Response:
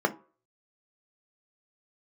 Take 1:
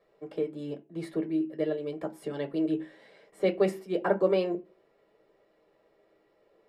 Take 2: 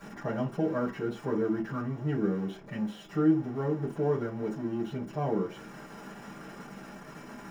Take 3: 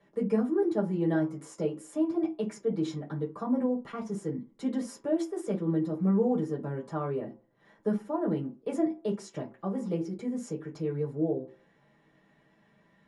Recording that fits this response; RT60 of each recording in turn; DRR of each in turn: 1; 0.40, 0.40, 0.40 seconds; 5.5, −9.0, −4.0 decibels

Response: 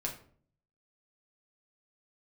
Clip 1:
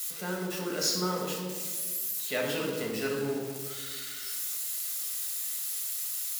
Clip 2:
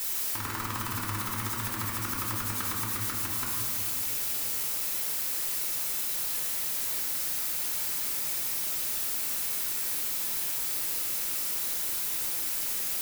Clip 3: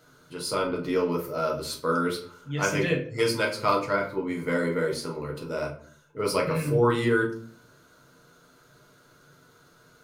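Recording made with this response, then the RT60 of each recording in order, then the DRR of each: 3; 1.6, 2.5, 0.50 seconds; −2.0, −4.0, −1.5 decibels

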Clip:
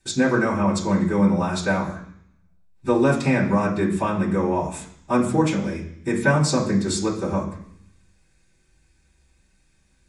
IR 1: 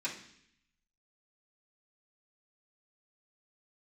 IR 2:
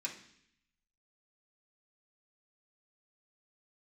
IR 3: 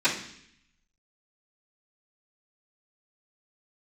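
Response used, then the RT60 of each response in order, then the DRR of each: 1; 0.65, 0.65, 0.65 seconds; −10.5, −5.0, −19.5 decibels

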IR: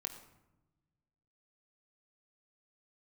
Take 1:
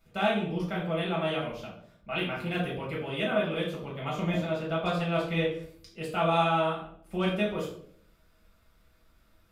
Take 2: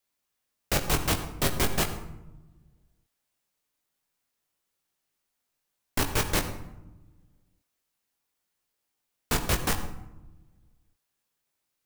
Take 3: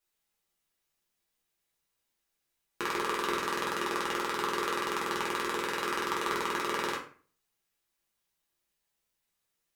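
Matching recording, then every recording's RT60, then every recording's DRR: 2; 0.60, 1.0, 0.40 seconds; −6.5, 4.0, −4.5 decibels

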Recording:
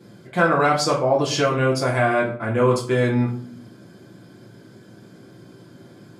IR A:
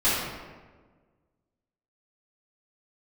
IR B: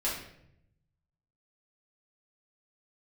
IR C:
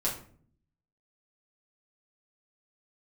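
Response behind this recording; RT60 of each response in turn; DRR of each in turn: C; 1.4, 0.75, 0.50 seconds; −13.0, −8.0, −7.0 decibels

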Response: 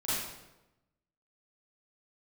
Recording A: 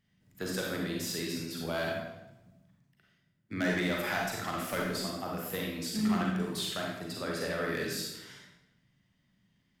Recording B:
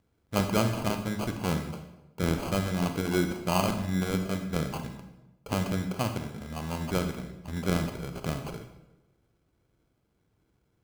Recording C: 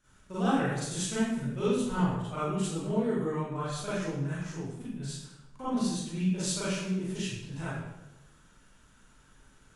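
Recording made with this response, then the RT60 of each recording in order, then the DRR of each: C; 1.0, 1.0, 1.0 seconds; −2.5, 6.5, −12.5 decibels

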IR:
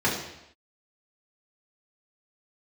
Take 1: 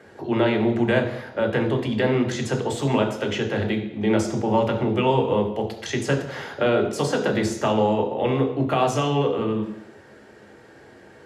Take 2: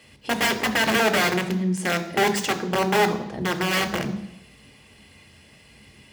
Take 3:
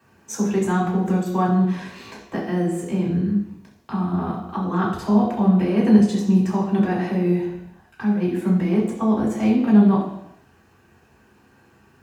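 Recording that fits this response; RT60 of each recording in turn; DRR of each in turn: 3; non-exponential decay, non-exponential decay, non-exponential decay; 2.0, 6.5, −7.0 decibels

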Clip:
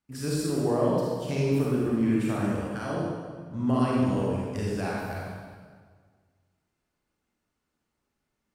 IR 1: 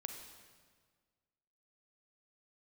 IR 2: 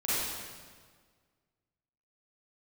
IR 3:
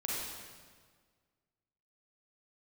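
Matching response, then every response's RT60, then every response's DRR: 3; 1.7, 1.7, 1.7 seconds; 4.5, −11.5, −5.5 decibels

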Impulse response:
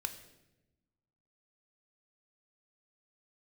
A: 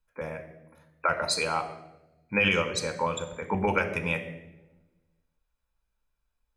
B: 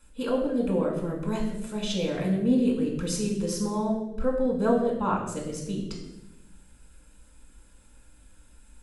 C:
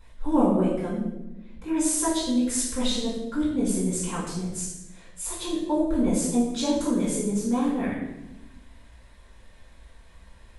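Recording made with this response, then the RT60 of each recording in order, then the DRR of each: A; 1.0, 0.95, 0.95 seconds; 6.5, −1.0, −10.5 decibels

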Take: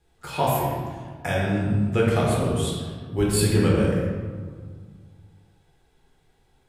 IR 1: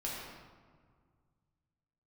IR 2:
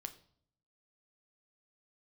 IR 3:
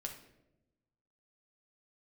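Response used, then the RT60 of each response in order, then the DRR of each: 1; 1.8, 0.60, 0.90 seconds; −6.0, 7.0, 2.0 decibels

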